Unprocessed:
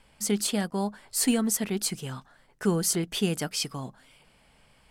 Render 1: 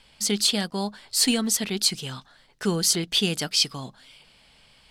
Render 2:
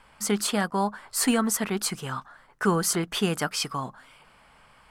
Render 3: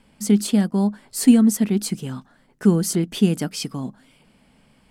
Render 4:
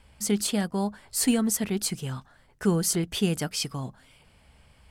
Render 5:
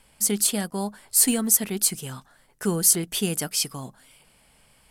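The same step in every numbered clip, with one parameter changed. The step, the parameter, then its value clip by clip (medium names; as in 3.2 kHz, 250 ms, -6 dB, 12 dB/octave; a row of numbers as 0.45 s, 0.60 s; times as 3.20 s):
peaking EQ, frequency: 4 kHz, 1.2 kHz, 230 Hz, 71 Hz, 12 kHz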